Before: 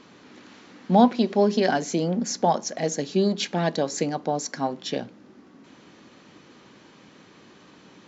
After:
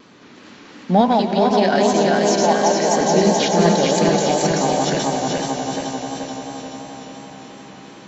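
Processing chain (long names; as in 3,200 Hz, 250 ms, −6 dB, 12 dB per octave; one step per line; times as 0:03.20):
feedback delay that plays each chunk backwards 215 ms, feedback 77%, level −1.5 dB
0:01.01–0:02.97: low-shelf EQ 260 Hz −11 dB
in parallel at −12 dB: hard clipping −14.5 dBFS, distortion −16 dB
on the sum: echo that builds up and dies away 89 ms, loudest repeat 5, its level −13.5 dB
pitch vibrato 2.8 Hz 32 cents
level +1.5 dB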